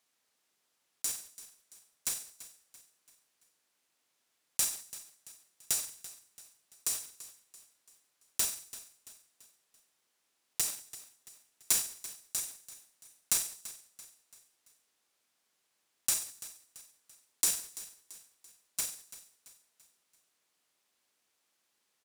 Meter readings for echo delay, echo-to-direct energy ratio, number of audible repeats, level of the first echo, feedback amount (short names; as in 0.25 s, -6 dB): 0.337 s, -15.0 dB, 3, -16.0 dB, 45%